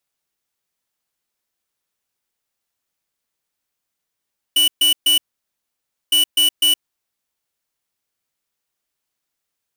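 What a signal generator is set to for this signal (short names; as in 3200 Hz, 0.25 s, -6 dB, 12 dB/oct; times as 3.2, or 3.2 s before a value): beep pattern square 2960 Hz, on 0.12 s, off 0.13 s, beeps 3, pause 0.94 s, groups 2, -14 dBFS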